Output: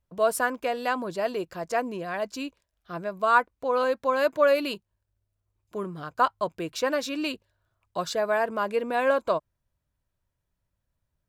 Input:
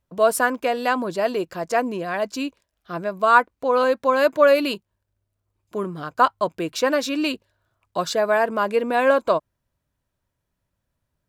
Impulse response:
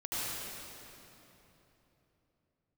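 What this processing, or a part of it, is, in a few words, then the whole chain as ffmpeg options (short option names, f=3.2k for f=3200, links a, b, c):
low shelf boost with a cut just above: -af "lowshelf=f=78:g=8,equalizer=f=260:t=o:w=0.77:g=-2.5,volume=-5.5dB"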